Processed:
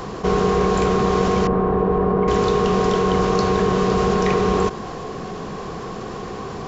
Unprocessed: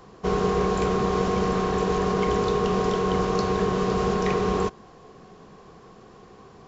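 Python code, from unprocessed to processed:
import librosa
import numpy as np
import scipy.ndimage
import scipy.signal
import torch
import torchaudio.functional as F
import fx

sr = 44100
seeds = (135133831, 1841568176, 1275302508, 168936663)

y = fx.lowpass(x, sr, hz=1100.0, slope=12, at=(1.47, 2.28))
y = fx.env_flatten(y, sr, amount_pct=50)
y = y * librosa.db_to_amplitude(4.0)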